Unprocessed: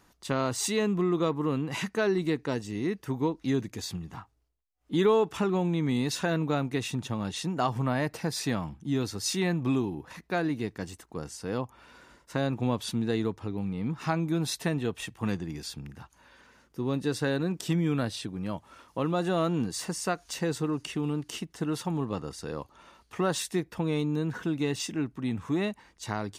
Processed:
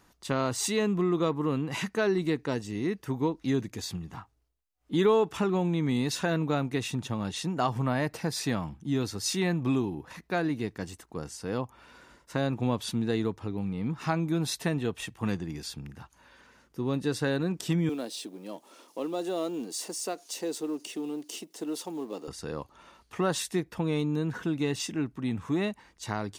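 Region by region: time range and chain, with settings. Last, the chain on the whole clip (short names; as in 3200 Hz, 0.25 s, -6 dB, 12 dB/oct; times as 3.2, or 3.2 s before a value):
17.89–22.28 G.711 law mismatch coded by mu + HPF 290 Hz 24 dB/oct + bell 1500 Hz -12.5 dB 1.8 oct
whole clip: dry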